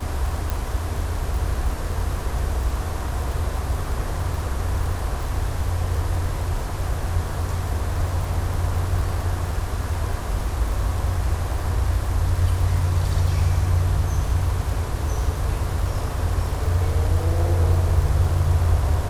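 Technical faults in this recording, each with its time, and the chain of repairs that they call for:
crackle 45 per s -29 dBFS
0.50 s: pop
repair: de-click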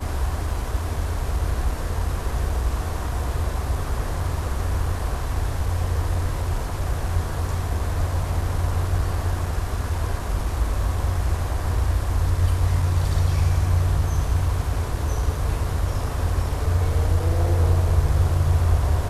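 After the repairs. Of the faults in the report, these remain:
0.50 s: pop

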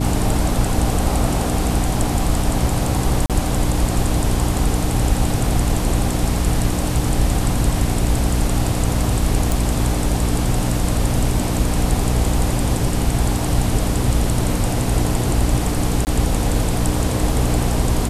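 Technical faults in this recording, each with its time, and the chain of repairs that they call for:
hum 60 Hz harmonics 5 -22 dBFS
3.26–3.30 s: dropout 37 ms
9.52 s: pop
16.05–16.07 s: dropout 19 ms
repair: de-click; de-hum 60 Hz, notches 5; interpolate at 3.26 s, 37 ms; interpolate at 16.05 s, 19 ms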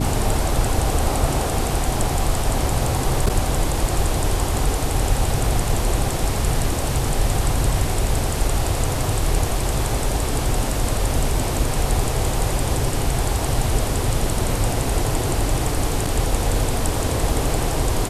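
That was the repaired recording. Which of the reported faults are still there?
nothing left

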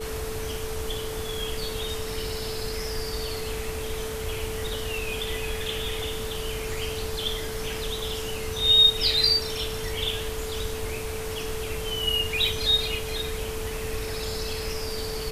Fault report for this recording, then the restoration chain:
whine 440 Hz -33 dBFS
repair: band-stop 440 Hz, Q 30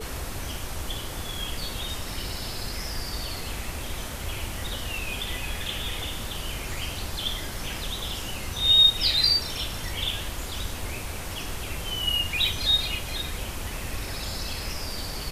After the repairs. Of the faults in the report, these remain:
nothing left

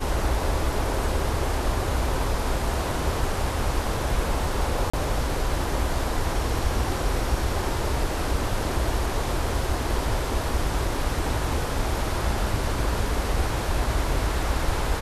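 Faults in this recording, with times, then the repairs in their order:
4.90–4.93 s: dropout 35 ms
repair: interpolate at 4.90 s, 35 ms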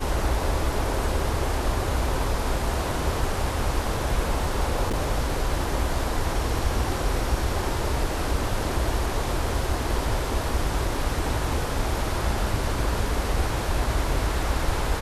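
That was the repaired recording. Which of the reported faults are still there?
nothing left

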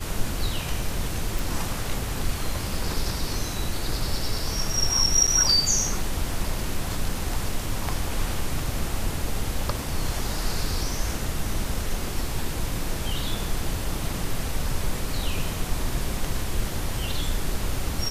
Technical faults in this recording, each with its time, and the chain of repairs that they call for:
1.39 s: pop
5.27–5.28 s: dropout 6.8 ms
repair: de-click; interpolate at 5.27 s, 6.8 ms

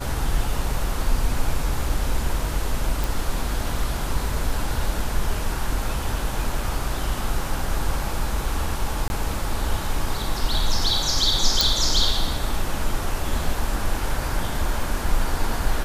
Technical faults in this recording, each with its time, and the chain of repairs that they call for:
3.04 s: pop
9.08–9.10 s: dropout 21 ms
11.61 s: pop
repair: de-click; interpolate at 9.08 s, 21 ms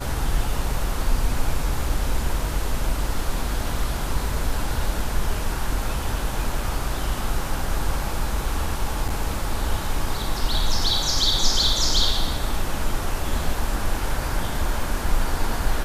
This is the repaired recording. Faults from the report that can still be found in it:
nothing left

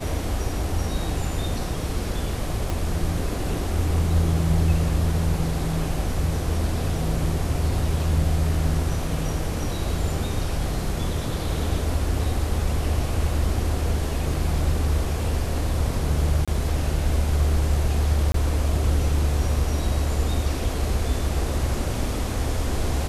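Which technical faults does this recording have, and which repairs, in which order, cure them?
2.70 s: pop
16.45–16.48 s: dropout 26 ms
18.32–18.34 s: dropout 23 ms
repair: de-click; interpolate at 16.45 s, 26 ms; interpolate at 18.32 s, 23 ms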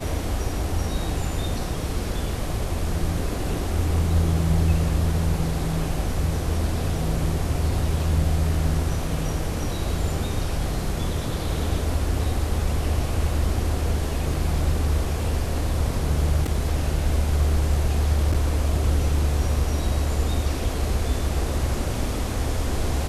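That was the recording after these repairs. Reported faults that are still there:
2.70 s: pop

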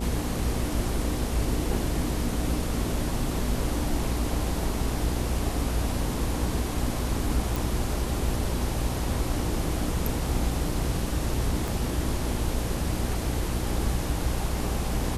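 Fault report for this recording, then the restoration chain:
buzz 60 Hz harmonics 11 -31 dBFS
7.56 s: pop
11.68 s: pop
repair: de-click; de-hum 60 Hz, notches 11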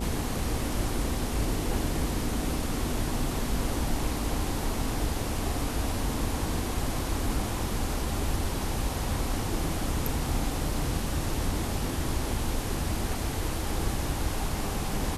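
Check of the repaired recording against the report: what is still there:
11.68 s: pop

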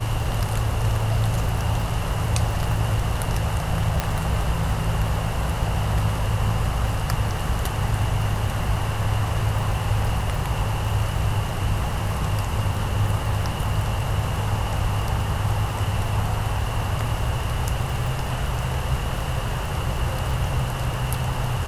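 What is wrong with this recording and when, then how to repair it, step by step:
crackle 23 per s -28 dBFS
4.00 s: pop -7 dBFS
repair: de-click

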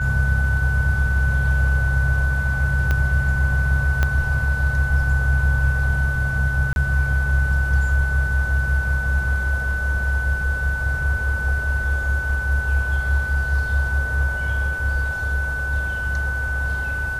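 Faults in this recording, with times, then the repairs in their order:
whine 1.5 kHz -24 dBFS
2.91 s: pop -9 dBFS
4.03 s: pop -7 dBFS
6.73–6.76 s: dropout 31 ms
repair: de-click; band-stop 1.5 kHz, Q 30; interpolate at 6.73 s, 31 ms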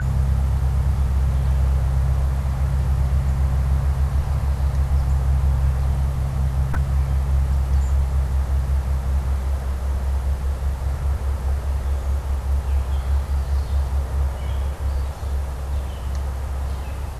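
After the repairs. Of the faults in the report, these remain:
2.91 s: pop
4.03 s: pop

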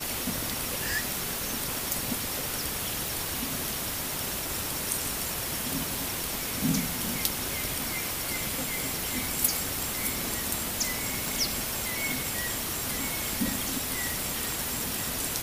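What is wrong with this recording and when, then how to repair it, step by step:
crackle 29 per s -35 dBFS
3.08 s: pop
11.28 s: pop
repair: de-click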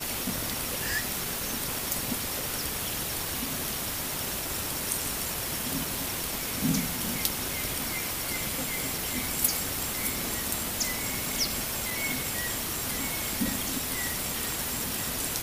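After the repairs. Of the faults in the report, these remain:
nothing left

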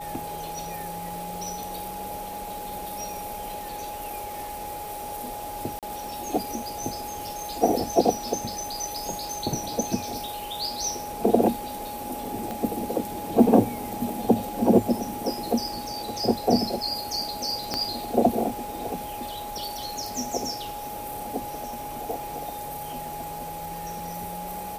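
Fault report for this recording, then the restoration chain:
whine 830 Hz -34 dBFS
5.79–5.83 s: dropout 37 ms
12.51 s: pop -18 dBFS
17.74 s: pop -11 dBFS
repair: de-click; band-stop 830 Hz, Q 30; interpolate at 5.79 s, 37 ms

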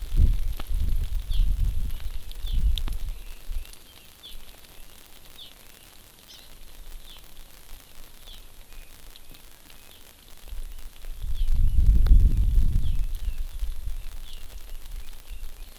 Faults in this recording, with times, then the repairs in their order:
crackle 54 per s -31 dBFS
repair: de-click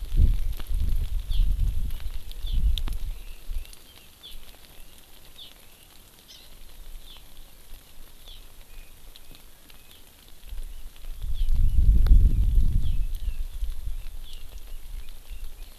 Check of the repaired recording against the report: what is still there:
nothing left

